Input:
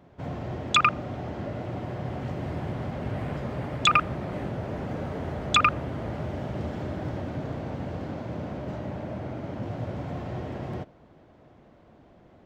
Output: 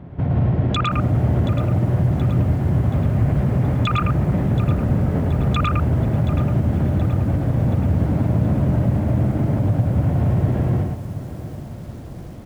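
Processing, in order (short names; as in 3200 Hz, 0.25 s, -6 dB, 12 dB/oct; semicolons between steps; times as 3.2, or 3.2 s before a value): tone controls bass +13 dB, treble -15 dB; compressor 6:1, threshold -22 dBFS, peak gain reduction 8 dB; limiter -21.5 dBFS, peak gain reduction 10.5 dB; echo 0.11 s -4 dB; lo-fi delay 0.726 s, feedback 55%, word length 8-bit, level -13 dB; gain +8.5 dB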